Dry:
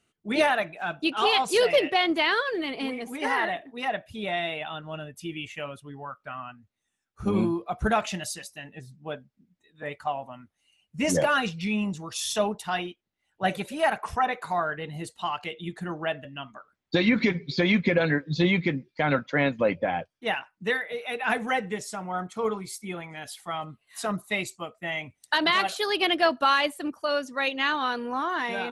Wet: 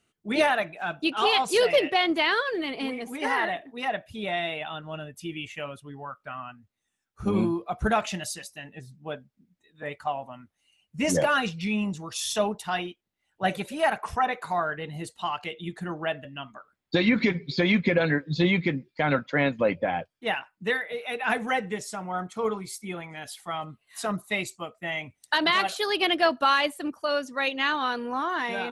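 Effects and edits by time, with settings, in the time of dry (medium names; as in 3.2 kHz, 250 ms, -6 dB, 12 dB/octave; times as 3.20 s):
15.88–21.04 s: band-stop 5.9 kHz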